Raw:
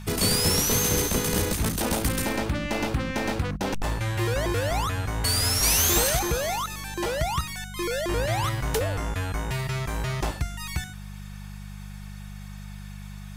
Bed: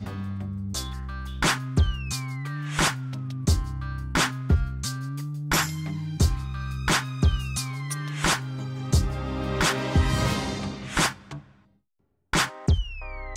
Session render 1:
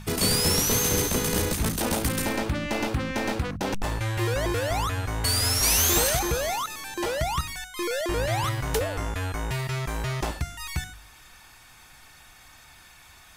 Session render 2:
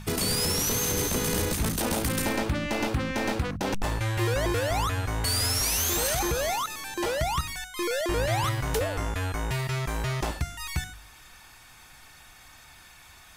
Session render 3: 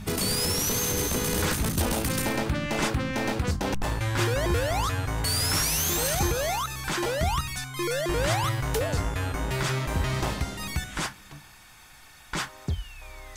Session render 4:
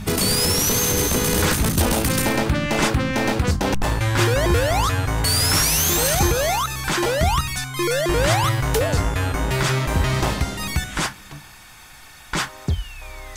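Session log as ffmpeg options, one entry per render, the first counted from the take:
-af "bandreject=f=50:t=h:w=4,bandreject=f=100:t=h:w=4,bandreject=f=150:t=h:w=4,bandreject=f=200:t=h:w=4"
-af "alimiter=limit=0.141:level=0:latency=1:release=59"
-filter_complex "[1:a]volume=0.398[s0];[0:a][s0]amix=inputs=2:normalize=0"
-af "volume=2.24"

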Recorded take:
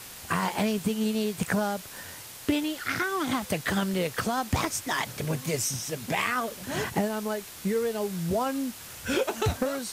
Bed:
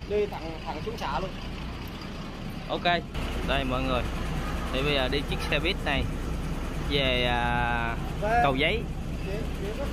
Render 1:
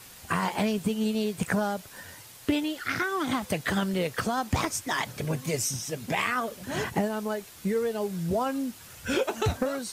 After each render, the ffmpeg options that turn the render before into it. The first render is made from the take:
-af "afftdn=nr=6:nf=-44"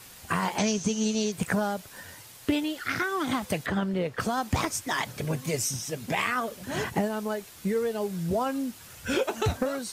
-filter_complex "[0:a]asettb=1/sr,asplit=3[s0][s1][s2];[s0]atrim=end=0.584[s3];[s1]atrim=start=0.58:end=1.32,asetpts=PTS-STARTPTS,afade=t=in:d=0.004:c=qsin,afade=t=out:st=0.736:d=0.004:c=qsin,lowpass=f=6200:t=q:w=12[s4];[s2]atrim=start=1.316[s5];[s3][s4]acrossfade=d=0.004:c1=hsin:c2=qsin[s6];[s6][s5]acrossfade=d=0.004:c1=qsin:c2=hsin,asettb=1/sr,asplit=3[s7][s8][s9];[s7]atrim=end=3.664[s10];[s8]atrim=start=3.66:end=4.2,asetpts=PTS-STARTPTS,afade=t=in:d=0.004:c=qsin,afade=t=out:st=0.536:d=0.004:c=qsin,lowpass=f=1600:p=1[s11];[s9]atrim=start=4.196[s12];[s10][s11]acrossfade=d=0.004:c1=hsin:c2=qsin[s13];[s13][s12]acrossfade=d=0.004:c1=qsin:c2=hsin"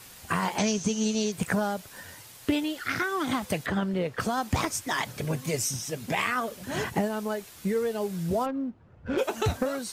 -filter_complex "[0:a]asplit=3[s0][s1][s2];[s0]afade=t=out:st=8.45:d=0.02[s3];[s1]adynamicsmooth=sensitivity=1:basefreq=680,afade=t=in:st=8.45:d=0.02,afade=t=out:st=9.17:d=0.02[s4];[s2]afade=t=in:st=9.17:d=0.02[s5];[s3][s4][s5]amix=inputs=3:normalize=0"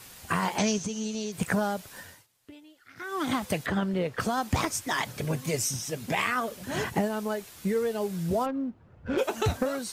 -filter_complex "[0:a]asettb=1/sr,asplit=3[s0][s1][s2];[s0]atrim=end=0.784[s3];[s1]atrim=start=0.78:end=1.39,asetpts=PTS-STARTPTS,afade=t=in:d=0.004:c=qsin,afade=t=out:st=0.606:d=0.004:c=qsin,acompressor=threshold=0.0224:ratio=2:attack=3.2:release=140:knee=1:detection=peak[s4];[s2]atrim=start=1.386[s5];[s3][s4]acrossfade=d=0.004:c1=hsin:c2=qsin[s6];[s6][s5]acrossfade=d=0.004:c1=qsin:c2=hsin,asplit=3[s7][s8][s9];[s7]atrim=end=2.27,asetpts=PTS-STARTPTS,afade=t=out:st=1.99:d=0.28:silence=0.0707946[s10];[s8]atrim=start=2.27:end=2.96,asetpts=PTS-STARTPTS,volume=0.0708[s11];[s9]atrim=start=2.96,asetpts=PTS-STARTPTS,afade=t=in:d=0.28:silence=0.0707946[s12];[s10][s11][s12]concat=n=3:v=0:a=1"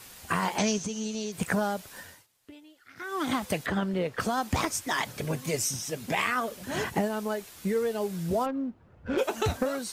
-af "equalizer=f=120:t=o:w=1:g=-3.5"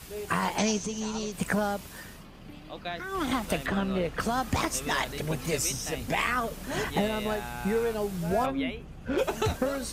-filter_complex "[1:a]volume=0.266[s0];[0:a][s0]amix=inputs=2:normalize=0"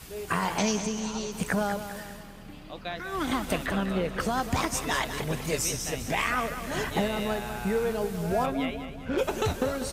-af "aecho=1:1:197|394|591|788|985:0.299|0.146|0.0717|0.0351|0.0172"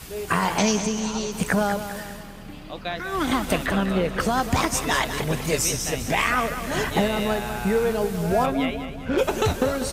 -af "volume=1.88"

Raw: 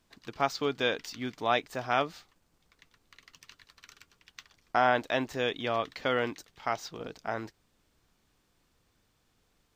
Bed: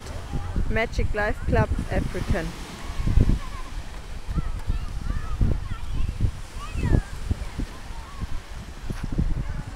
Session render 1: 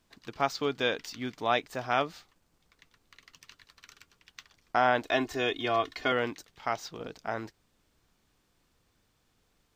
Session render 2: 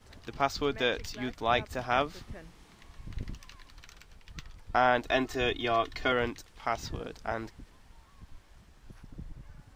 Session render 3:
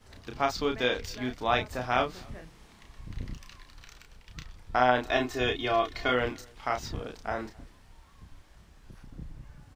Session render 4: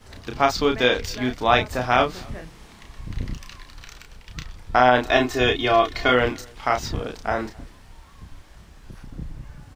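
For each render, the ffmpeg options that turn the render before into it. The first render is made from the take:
-filter_complex "[0:a]asettb=1/sr,asplit=3[s0][s1][s2];[s0]atrim=end=5.054[s3];[s1]atrim=start=5.05:end=6.12,asetpts=PTS-STARTPTS,afade=t=in:d=0.004:c=qsin,afade=t=out:st=1.066:d=0.004:c=qsin,aecho=1:1:2.8:0.8,atrim=end_sample=47187[s4];[s2]atrim=start=6.116[s5];[s3][s4]acrossfade=d=0.004:c1=hsin:c2=qsin[s6];[s6][s5]acrossfade=d=0.004:c1=qsin:c2=hsin"
-filter_complex "[1:a]volume=0.1[s0];[0:a][s0]amix=inputs=2:normalize=0"
-filter_complex "[0:a]asplit=2[s0][s1];[s1]adelay=32,volume=0.562[s2];[s0][s2]amix=inputs=2:normalize=0,asplit=2[s3][s4];[s4]adelay=262.4,volume=0.0447,highshelf=f=4000:g=-5.9[s5];[s3][s5]amix=inputs=2:normalize=0"
-af "volume=2.66,alimiter=limit=0.794:level=0:latency=1"

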